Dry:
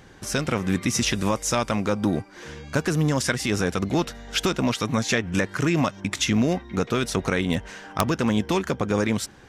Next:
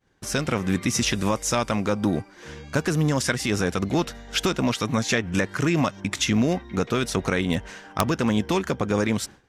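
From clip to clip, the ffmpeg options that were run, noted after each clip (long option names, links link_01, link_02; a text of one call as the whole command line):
ffmpeg -i in.wav -af "agate=range=-33dB:threshold=-37dB:ratio=3:detection=peak" out.wav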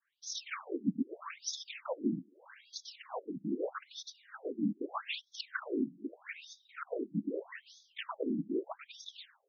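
ffmpeg -i in.wav -af "aeval=exprs='(mod(3.98*val(0)+1,2)-1)/3.98':channel_layout=same,afftfilt=real='hypot(re,im)*cos(2*PI*random(0))':imag='hypot(re,im)*sin(2*PI*random(1))':win_size=512:overlap=0.75,afftfilt=real='re*between(b*sr/1024,230*pow(4800/230,0.5+0.5*sin(2*PI*0.8*pts/sr))/1.41,230*pow(4800/230,0.5+0.5*sin(2*PI*0.8*pts/sr))*1.41)':imag='im*between(b*sr/1024,230*pow(4800/230,0.5+0.5*sin(2*PI*0.8*pts/sr))/1.41,230*pow(4800/230,0.5+0.5*sin(2*PI*0.8*pts/sr))*1.41)':win_size=1024:overlap=0.75,volume=-1dB" out.wav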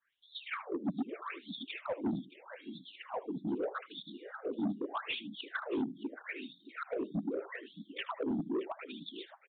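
ffmpeg -i in.wav -af "aecho=1:1:77|623:0.126|0.15,aresample=8000,asoftclip=type=tanh:threshold=-31dB,aresample=44100,volume=3dB" out.wav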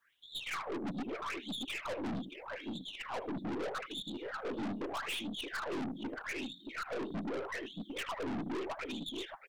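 ffmpeg -i in.wav -af "aeval=exprs='(tanh(178*val(0)+0.3)-tanh(0.3))/178':channel_layout=same,volume=9dB" out.wav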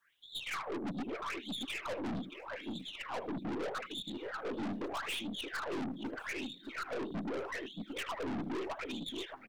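ffmpeg -i in.wav -filter_complex "[0:a]acrossover=split=210|730|5200[link_01][link_02][link_03][link_04];[link_04]acrusher=bits=5:mode=log:mix=0:aa=0.000001[link_05];[link_01][link_02][link_03][link_05]amix=inputs=4:normalize=0,aecho=1:1:1097:0.0668" out.wav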